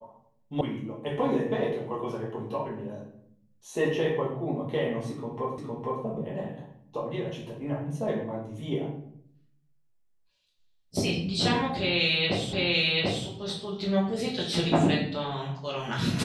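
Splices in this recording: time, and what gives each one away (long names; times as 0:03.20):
0:00.61: cut off before it has died away
0:05.58: the same again, the last 0.46 s
0:12.53: the same again, the last 0.74 s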